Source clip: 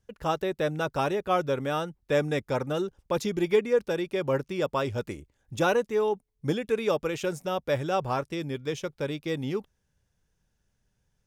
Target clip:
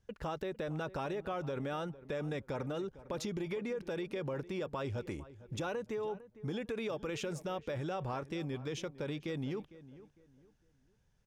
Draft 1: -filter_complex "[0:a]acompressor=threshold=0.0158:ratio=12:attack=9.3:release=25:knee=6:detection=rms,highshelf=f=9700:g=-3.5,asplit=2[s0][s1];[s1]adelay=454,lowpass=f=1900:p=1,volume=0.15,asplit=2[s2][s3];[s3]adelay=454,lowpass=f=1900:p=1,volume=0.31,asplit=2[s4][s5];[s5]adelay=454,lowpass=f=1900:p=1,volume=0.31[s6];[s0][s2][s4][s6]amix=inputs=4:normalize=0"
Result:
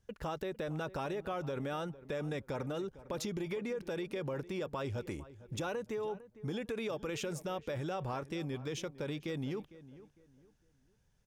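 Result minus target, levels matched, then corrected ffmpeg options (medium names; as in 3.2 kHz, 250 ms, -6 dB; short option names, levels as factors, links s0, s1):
8 kHz band +2.5 dB
-filter_complex "[0:a]acompressor=threshold=0.0158:ratio=12:attack=9.3:release=25:knee=6:detection=rms,highshelf=f=9700:g=-13,asplit=2[s0][s1];[s1]adelay=454,lowpass=f=1900:p=1,volume=0.15,asplit=2[s2][s3];[s3]adelay=454,lowpass=f=1900:p=1,volume=0.31,asplit=2[s4][s5];[s5]adelay=454,lowpass=f=1900:p=1,volume=0.31[s6];[s0][s2][s4][s6]amix=inputs=4:normalize=0"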